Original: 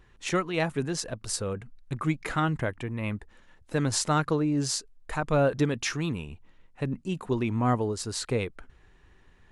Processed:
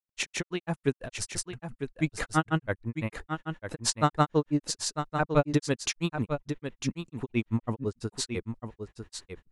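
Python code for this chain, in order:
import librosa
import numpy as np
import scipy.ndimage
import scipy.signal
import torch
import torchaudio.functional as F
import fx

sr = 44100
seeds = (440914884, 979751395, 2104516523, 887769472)

y = fx.granulator(x, sr, seeds[0], grain_ms=100.0, per_s=6.0, spray_ms=100.0, spread_st=0)
y = y + 10.0 ** (-8.0 / 20.0) * np.pad(y, (int(950 * sr / 1000.0), 0))[:len(y)]
y = y * 10.0 ** (4.0 / 20.0)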